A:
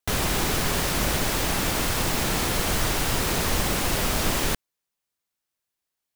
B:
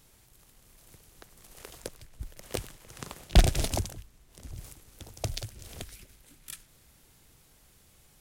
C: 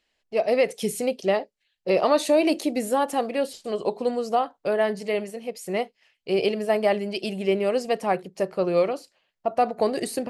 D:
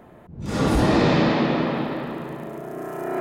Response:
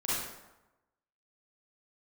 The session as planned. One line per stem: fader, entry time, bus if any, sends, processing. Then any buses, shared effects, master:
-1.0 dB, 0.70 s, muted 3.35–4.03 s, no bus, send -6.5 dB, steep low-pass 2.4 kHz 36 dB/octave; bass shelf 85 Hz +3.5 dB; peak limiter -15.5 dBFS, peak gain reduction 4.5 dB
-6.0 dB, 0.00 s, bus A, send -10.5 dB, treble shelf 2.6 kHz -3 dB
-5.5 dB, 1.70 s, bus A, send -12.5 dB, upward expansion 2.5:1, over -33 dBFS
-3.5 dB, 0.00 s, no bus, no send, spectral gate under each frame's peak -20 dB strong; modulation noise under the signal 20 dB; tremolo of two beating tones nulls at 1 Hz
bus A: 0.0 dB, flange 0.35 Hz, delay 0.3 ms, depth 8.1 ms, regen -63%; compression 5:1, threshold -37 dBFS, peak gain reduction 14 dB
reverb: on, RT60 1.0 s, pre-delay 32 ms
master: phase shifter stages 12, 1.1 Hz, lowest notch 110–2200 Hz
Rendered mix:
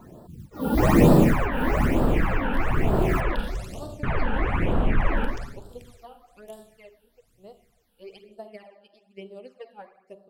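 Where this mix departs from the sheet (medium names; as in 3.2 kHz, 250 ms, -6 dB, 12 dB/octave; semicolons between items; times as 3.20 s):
stem C: send -12.5 dB -> -22 dB; stem D -3.5 dB -> +3.5 dB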